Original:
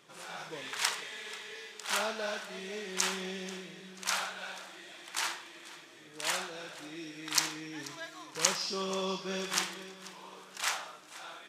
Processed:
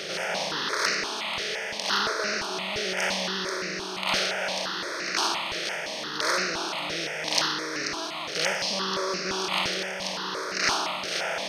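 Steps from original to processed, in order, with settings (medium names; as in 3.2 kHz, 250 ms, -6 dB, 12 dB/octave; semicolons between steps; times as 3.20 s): spectral levelling over time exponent 0.4; high-pass 160 Hz 12 dB/octave; gain riding 2 s; Savitzky-Golay filter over 15 samples; stepped phaser 5.8 Hz 260–3300 Hz; trim +5 dB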